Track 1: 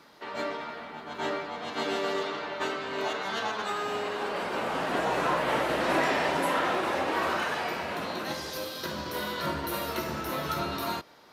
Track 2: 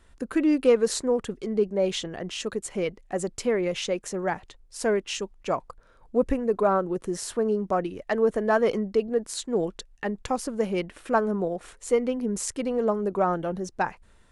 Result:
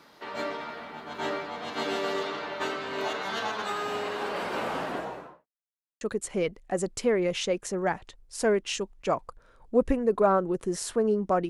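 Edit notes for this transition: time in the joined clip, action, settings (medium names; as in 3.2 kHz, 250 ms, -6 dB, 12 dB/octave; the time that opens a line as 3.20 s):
track 1
4.61–5.47 s: studio fade out
5.47–6.01 s: mute
6.01 s: go over to track 2 from 2.42 s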